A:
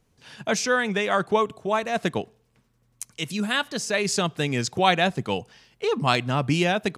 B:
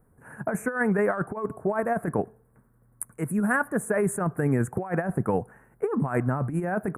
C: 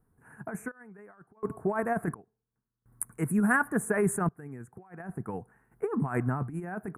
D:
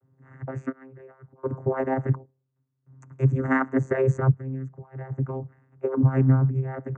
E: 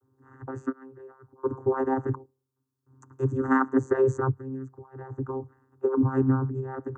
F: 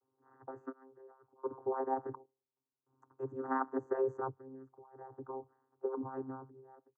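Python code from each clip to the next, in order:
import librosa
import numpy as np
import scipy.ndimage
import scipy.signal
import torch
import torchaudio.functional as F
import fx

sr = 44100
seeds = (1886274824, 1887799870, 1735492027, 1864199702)

y1 = scipy.signal.sosfilt(scipy.signal.ellip(3, 1.0, 60, [1600.0, 9600.0], 'bandstop', fs=sr, output='sos'), x)
y1 = fx.over_compress(y1, sr, threshold_db=-26.0, ratio=-0.5)
y1 = F.gain(torch.from_numpy(y1), 2.0).numpy()
y2 = fx.peak_eq(y1, sr, hz=560.0, db=-10.5, octaves=0.29)
y2 = fx.tremolo_random(y2, sr, seeds[0], hz=1.4, depth_pct=95)
y3 = fx.vocoder(y2, sr, bands=16, carrier='saw', carrier_hz=132.0)
y3 = F.gain(torch.from_numpy(y3), 7.5).numpy()
y4 = fx.fixed_phaser(y3, sr, hz=610.0, stages=6)
y4 = F.gain(torch.from_numpy(y4), 3.0).numpy()
y5 = fx.fade_out_tail(y4, sr, length_s=1.2)
y5 = fx.bandpass_q(y5, sr, hz=700.0, q=1.9)
y5 = F.gain(torch.from_numpy(y5), -3.0).numpy()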